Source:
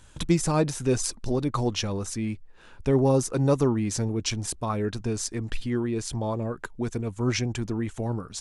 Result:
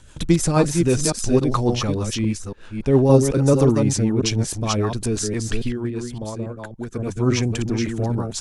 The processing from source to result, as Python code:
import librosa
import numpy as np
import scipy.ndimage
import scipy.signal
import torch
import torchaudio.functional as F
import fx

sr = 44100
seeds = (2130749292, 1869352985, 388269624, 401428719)

y = fx.reverse_delay(x, sr, ms=281, wet_db=-4.5)
y = fx.rotary(y, sr, hz=6.3)
y = fx.upward_expand(y, sr, threshold_db=-38.0, expansion=1.5, at=(5.67, 6.98), fade=0.02)
y = y * 10.0 ** (7.0 / 20.0)